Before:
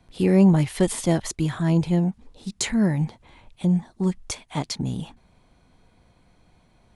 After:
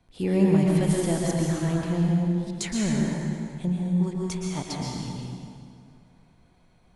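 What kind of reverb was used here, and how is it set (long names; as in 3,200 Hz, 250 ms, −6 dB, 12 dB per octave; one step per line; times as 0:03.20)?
dense smooth reverb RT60 2.3 s, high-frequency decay 0.75×, pre-delay 105 ms, DRR −2.5 dB
level −6.5 dB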